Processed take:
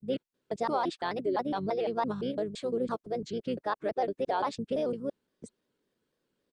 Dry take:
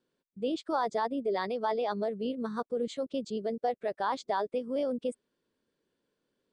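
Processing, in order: slices played last to first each 170 ms, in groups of 3; harmony voices -12 st -15 dB, -5 st -11 dB; vibrato with a chosen wave square 3.6 Hz, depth 100 cents

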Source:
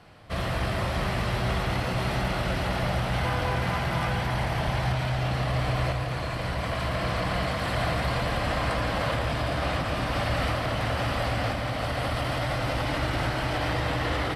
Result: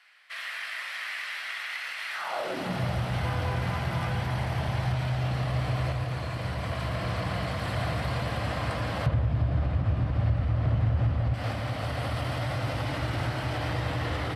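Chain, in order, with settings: 9.06–11.34 s: RIAA curve playback; compression 10:1, threshold -20 dBFS, peak gain reduction 10.5 dB; high-pass sweep 1.9 kHz -> 89 Hz, 2.10–2.88 s; trim -4.5 dB

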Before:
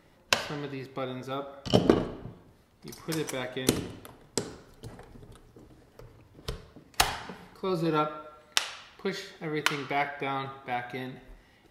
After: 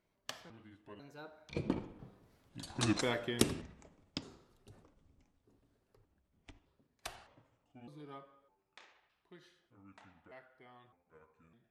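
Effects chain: pitch shift switched off and on -6 st, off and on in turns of 553 ms; Doppler pass-by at 2.92 s, 35 m/s, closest 9.2 m; trim +1 dB

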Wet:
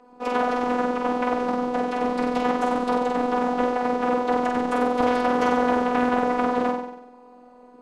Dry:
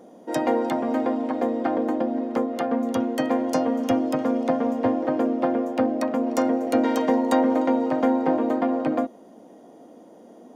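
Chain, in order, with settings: in parallel at -10 dB: bit crusher 5-bit; on the sum: whisper effect; on a send: flutter echo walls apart 10.9 m, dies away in 1.1 s; on the sum: robot voice 183 Hz; distance through air 140 m; speed mistake 33 rpm record played at 45 rpm; loudspeaker Doppler distortion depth 0.42 ms; trim -2 dB

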